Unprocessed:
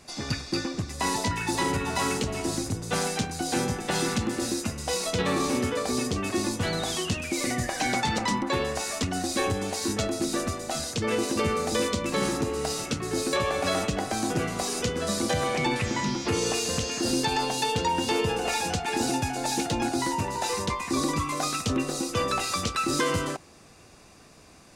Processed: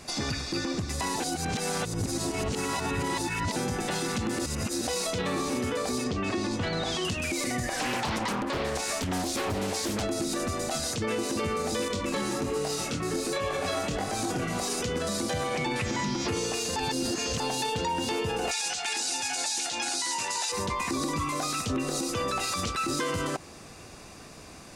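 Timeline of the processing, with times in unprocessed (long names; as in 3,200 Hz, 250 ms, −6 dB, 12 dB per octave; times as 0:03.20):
0:01.20–0:03.56: reverse
0:04.46–0:04.87: reverse
0:06.04–0:07.05: low-pass filter 5,000 Hz
0:07.73–0:10.03: highs frequency-modulated by the lows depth 0.84 ms
0:11.88–0:14.58: chorus effect 1.3 Hz, delay 20 ms, depth 4.4 ms
0:16.76–0:17.40: reverse
0:18.51–0:20.52: meter weighting curve ITU-R 468
whole clip: downward compressor 2.5 to 1, threshold −31 dBFS; brickwall limiter −27 dBFS; level +6 dB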